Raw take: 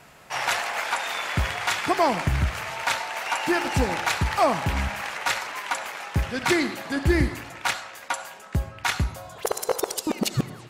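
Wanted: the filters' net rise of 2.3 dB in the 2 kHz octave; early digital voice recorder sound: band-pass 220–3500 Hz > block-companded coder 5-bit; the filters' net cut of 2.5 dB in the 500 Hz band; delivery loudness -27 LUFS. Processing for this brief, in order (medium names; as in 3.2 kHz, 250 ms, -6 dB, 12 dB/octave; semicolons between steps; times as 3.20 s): band-pass 220–3500 Hz; peaking EQ 500 Hz -3.5 dB; peaking EQ 2 kHz +3.5 dB; block-companded coder 5-bit; trim -0.5 dB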